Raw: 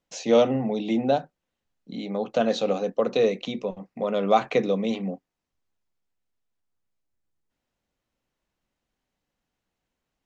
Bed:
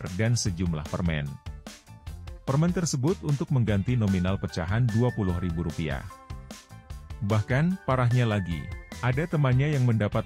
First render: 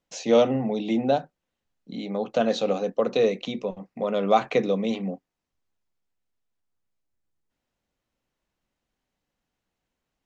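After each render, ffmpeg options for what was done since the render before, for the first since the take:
ffmpeg -i in.wav -af anull out.wav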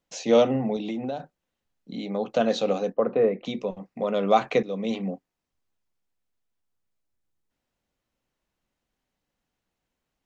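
ffmpeg -i in.wav -filter_complex "[0:a]asettb=1/sr,asplit=3[link_01][link_02][link_03];[link_01]atrim=end=0.764[link_04];[link_02]atrim=start=0.76:end=1.2,asetpts=PTS-STARTPTS,afade=type=in:duration=0.004:curve=qsin,afade=type=out:start_time=0.436:duration=0.004:curve=qsin,acompressor=threshold=-27dB:ratio=6:attack=3.2:release=140:knee=1:detection=peak[link_05];[link_03]atrim=start=1.196[link_06];[link_04][link_05]acrossfade=duration=0.004:curve1=hsin:curve2=qsin[link_07];[link_07][link_06]acrossfade=duration=0.004:curve1=qsin:curve2=hsin,asplit=3[link_08][link_09][link_10];[link_08]afade=type=out:start_time=2.92:duration=0.02[link_11];[link_09]lowpass=frequency=1900:width=0.5412,lowpass=frequency=1900:width=1.3066,afade=type=in:start_time=2.92:duration=0.02,afade=type=out:start_time=3.44:duration=0.02[link_12];[link_10]afade=type=in:start_time=3.44:duration=0.02[link_13];[link_11][link_12][link_13]amix=inputs=3:normalize=0,asplit=2[link_14][link_15];[link_14]atrim=end=4.63,asetpts=PTS-STARTPTS,afade=type=out:start_time=4.626:duration=0.004:curve=hsin:silence=0.158489[link_16];[link_15]atrim=start=4.63,asetpts=PTS-STARTPTS,afade=type=in:duration=0.42:curve=qsin:silence=0.158489[link_17];[link_16][link_17]concat=n=2:v=0:a=1" out.wav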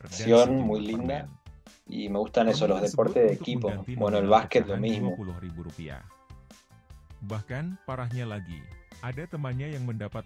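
ffmpeg -i in.wav -i bed.wav -filter_complex "[1:a]volume=-9.5dB[link_01];[0:a][link_01]amix=inputs=2:normalize=0" out.wav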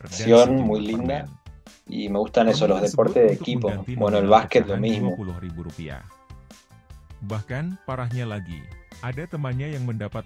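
ffmpeg -i in.wav -af "volume=5dB" out.wav

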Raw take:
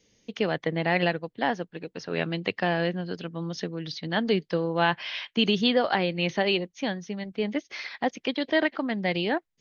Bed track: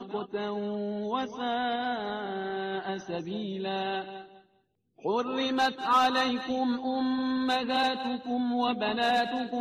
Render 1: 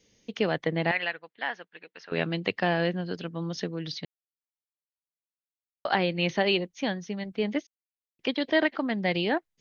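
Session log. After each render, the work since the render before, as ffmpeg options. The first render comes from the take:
ffmpeg -i in.wav -filter_complex "[0:a]asettb=1/sr,asplit=3[link_01][link_02][link_03];[link_01]atrim=end=0.914[link_04];[link_02]atrim=start=0.91:end=2.12,asetpts=PTS-STARTPTS,afade=type=in:duration=0.004:curve=qsin,afade=type=out:start_time=1.206:duration=0.004:curve=qsin,bandpass=frequency=2000:width_type=q:width=1.1[link_05];[link_03]atrim=start=2.116[link_06];[link_04][link_05]acrossfade=duration=0.004:curve1=hsin:curve2=qsin[link_07];[link_07][link_06]acrossfade=duration=0.004:curve1=qsin:curve2=hsin,asplit=5[link_08][link_09][link_10][link_11][link_12];[link_08]atrim=end=4.05,asetpts=PTS-STARTPTS,afade=type=out:start_time=4.046:duration=0.004:curve=hsin[link_13];[link_09]atrim=start=4.05:end=5.85,asetpts=PTS-STARTPTS,volume=0[link_14];[link_10]atrim=start=5.85:end=7.67,asetpts=PTS-STARTPTS,afade=type=in:duration=0.004:curve=hsin,afade=type=out:start_time=1.816:duration=0.004:curve=hsin[link_15];[link_11]atrim=start=7.67:end=8.19,asetpts=PTS-STARTPTS,volume=0[link_16];[link_12]atrim=start=8.19,asetpts=PTS-STARTPTS,afade=type=in:duration=0.004:curve=hsin[link_17];[link_13][link_14][link_15][link_16][link_17]concat=n=5:v=0:a=1" out.wav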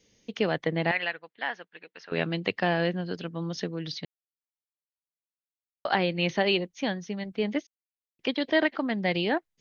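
ffmpeg -i in.wav -af anull out.wav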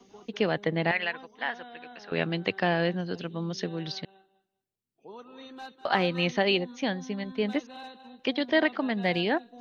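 ffmpeg -i in.wav -i bed.wav -filter_complex "[1:a]volume=-17dB[link_01];[0:a][link_01]amix=inputs=2:normalize=0" out.wav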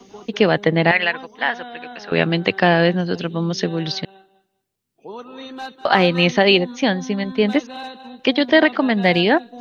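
ffmpeg -i in.wav -af "volume=11dB,alimiter=limit=-2dB:level=0:latency=1" out.wav

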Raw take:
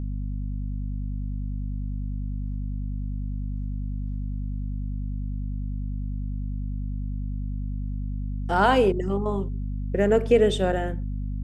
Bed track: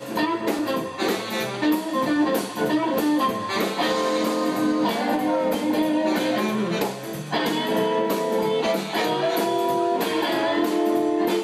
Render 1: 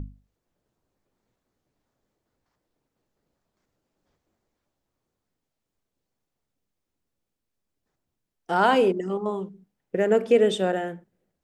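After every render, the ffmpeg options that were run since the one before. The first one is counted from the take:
ffmpeg -i in.wav -af "bandreject=frequency=50:width_type=h:width=6,bandreject=frequency=100:width_type=h:width=6,bandreject=frequency=150:width_type=h:width=6,bandreject=frequency=200:width_type=h:width=6,bandreject=frequency=250:width_type=h:width=6" out.wav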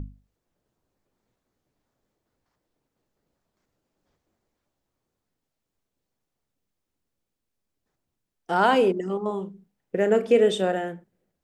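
ffmpeg -i in.wav -filter_complex "[0:a]asettb=1/sr,asplit=3[link_01][link_02][link_03];[link_01]atrim=end=9.274[link_04];[link_02]atrim=start=9.27:end=10.76,asetpts=PTS-STARTPTS,afade=type=in:duration=0.004:curve=qsin,afade=type=out:start_time=1.486:duration=0.004:curve=qsin,asplit=2[link_05][link_06];[link_06]adelay=35,volume=-12dB[link_07];[link_05][link_07]amix=inputs=2:normalize=0,atrim=end_sample=65709[link_08];[link_03]atrim=start=10.756[link_09];[link_04][link_08]acrossfade=duration=0.004:curve1=hsin:curve2=qsin[link_10];[link_10][link_09]acrossfade=duration=0.004:curve1=qsin:curve2=hsin" out.wav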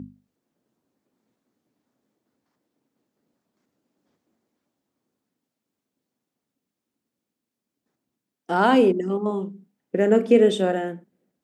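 ffmpeg -i in.wav -af "highpass=140,equalizer=frequency=250:width=1.6:gain=9" out.wav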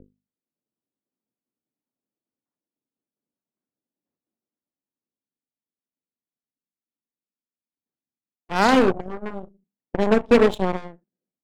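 ffmpeg -i in.wav -af "adynamicsmooth=sensitivity=6.5:basefreq=2300,aeval=exprs='0.562*(cos(1*acos(clip(val(0)/0.562,-1,1)))-cos(1*PI/2))+0.0562*(cos(6*acos(clip(val(0)/0.562,-1,1)))-cos(6*PI/2))+0.0708*(cos(7*acos(clip(val(0)/0.562,-1,1)))-cos(7*PI/2))+0.0891*(cos(8*acos(clip(val(0)/0.562,-1,1)))-cos(8*PI/2))':channel_layout=same" out.wav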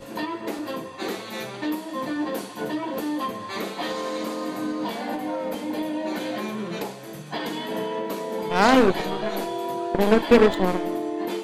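ffmpeg -i in.wav -i bed.wav -filter_complex "[1:a]volume=-6.5dB[link_01];[0:a][link_01]amix=inputs=2:normalize=0" out.wav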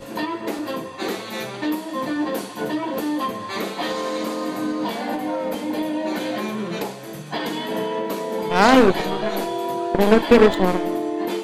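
ffmpeg -i in.wav -af "volume=3.5dB,alimiter=limit=-2dB:level=0:latency=1" out.wav

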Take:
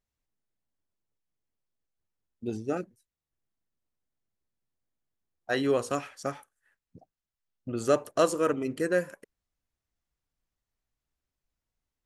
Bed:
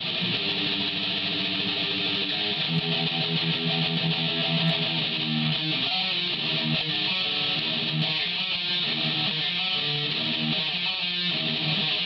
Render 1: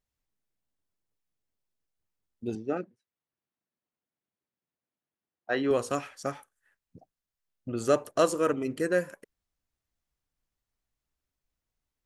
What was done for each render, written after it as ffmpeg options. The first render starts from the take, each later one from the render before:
ffmpeg -i in.wav -filter_complex "[0:a]asettb=1/sr,asplit=3[link_01][link_02][link_03];[link_01]atrim=end=2.554[link_04];[link_02]atrim=start=2.55:end=5.71,asetpts=PTS-STARTPTS,afade=type=in:duration=0.004:curve=qsin,afade=type=out:start_time=3.156:duration=0.004:curve=qsin,highpass=160,lowpass=3100[link_05];[link_03]atrim=start=5.706[link_06];[link_04][link_05]acrossfade=duration=0.004:curve1=hsin:curve2=qsin[link_07];[link_07][link_06]acrossfade=duration=0.004:curve1=qsin:curve2=hsin" out.wav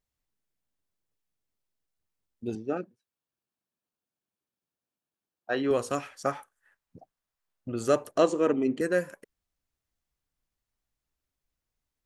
ffmpeg -i in.wav -filter_complex "[0:a]asettb=1/sr,asplit=3[link_01][link_02][link_03];[link_01]atrim=end=2.684[link_04];[link_02]atrim=start=2.68:end=5.6,asetpts=PTS-STARTPTS,afade=type=in:duration=0.004:curve=qsin,afade=type=out:start_time=2.916:duration=0.004:curve=qsin,bandreject=frequency=2000:width=7.3[link_05];[link_03]atrim=start=5.596[link_06];[link_04][link_05]acrossfade=duration=0.004:curve1=hsin:curve2=qsin[link_07];[link_07][link_06]acrossfade=duration=0.004:curve1=qsin:curve2=hsin,asettb=1/sr,asplit=3[link_08][link_09][link_10];[link_08]atrim=end=6.244[link_11];[link_09]atrim=start=6.24:end=7.68,asetpts=PTS-STARTPTS,afade=type=in:duration=0.004:curve=qsin,afade=type=out:start_time=1.436:duration=0.004:curve=qsin,equalizer=frequency=1000:width=0.65:gain=6.5[link_12];[link_10]atrim=start=7.676[link_13];[link_11][link_12]acrossfade=duration=0.004:curve1=hsin:curve2=qsin[link_14];[link_14][link_13]acrossfade=duration=0.004:curve1=qsin:curve2=hsin,asettb=1/sr,asplit=3[link_15][link_16][link_17];[link_15]atrim=end=8.184[link_18];[link_16]atrim=start=8.18:end=8.81,asetpts=PTS-STARTPTS,afade=type=in:duration=0.004:curve=qsin,afade=type=out:start_time=0.626:duration=0.004:curve=qsin,highpass=120,equalizer=frequency=250:width_type=q:width=4:gain=7,equalizer=frequency=380:width_type=q:width=4:gain=5,equalizer=frequency=800:width_type=q:width=4:gain=4,equalizer=frequency=1400:width_type=q:width=4:gain=-6,equalizer=frequency=5100:width_type=q:width=4:gain=-9,lowpass=frequency=6700:width=0.5412,lowpass=frequency=6700:width=1.3066[link_19];[link_17]atrim=start=8.806[link_20];[link_18][link_19]acrossfade=duration=0.004:curve1=hsin:curve2=qsin[link_21];[link_21][link_20]acrossfade=duration=0.004:curve1=qsin:curve2=hsin" out.wav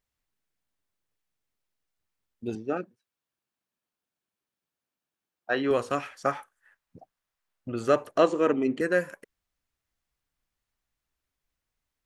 ffmpeg -i in.wav -filter_complex "[0:a]acrossover=split=4100[link_01][link_02];[link_02]acompressor=threshold=-49dB:ratio=4:attack=1:release=60[link_03];[link_01][link_03]amix=inputs=2:normalize=0,equalizer=frequency=1800:width_type=o:width=2.3:gain=4.5" out.wav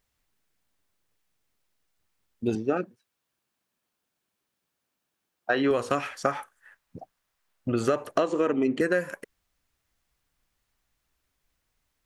ffmpeg -i in.wav -filter_complex "[0:a]asplit=2[link_01][link_02];[link_02]alimiter=limit=-15dB:level=0:latency=1:release=68,volume=3dB[link_03];[link_01][link_03]amix=inputs=2:normalize=0,acompressor=threshold=-20dB:ratio=12" out.wav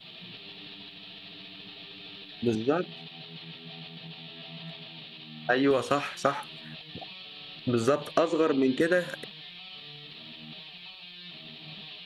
ffmpeg -i in.wav -i bed.wav -filter_complex "[1:a]volume=-18.5dB[link_01];[0:a][link_01]amix=inputs=2:normalize=0" out.wav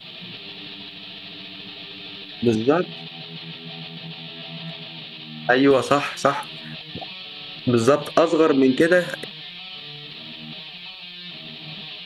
ffmpeg -i in.wav -af "volume=8dB,alimiter=limit=-2dB:level=0:latency=1" out.wav

